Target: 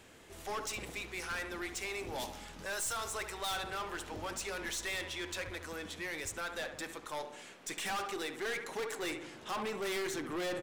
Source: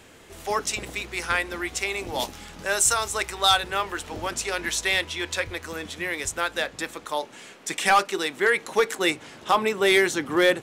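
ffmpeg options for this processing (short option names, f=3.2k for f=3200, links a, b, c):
-filter_complex "[0:a]asplit=2[a][b];[b]adelay=70,lowpass=f=1.9k:p=1,volume=-12dB,asplit=2[c][d];[d]adelay=70,lowpass=f=1.9k:p=1,volume=0.54,asplit=2[e][f];[f]adelay=70,lowpass=f=1.9k:p=1,volume=0.54,asplit=2[g][h];[h]adelay=70,lowpass=f=1.9k:p=1,volume=0.54,asplit=2[i][j];[j]adelay=70,lowpass=f=1.9k:p=1,volume=0.54,asplit=2[k][l];[l]adelay=70,lowpass=f=1.9k:p=1,volume=0.54[m];[a][c][e][g][i][k][m]amix=inputs=7:normalize=0,aeval=exprs='(tanh(22.4*val(0)+0.2)-tanh(0.2))/22.4':c=same,volume=-7dB"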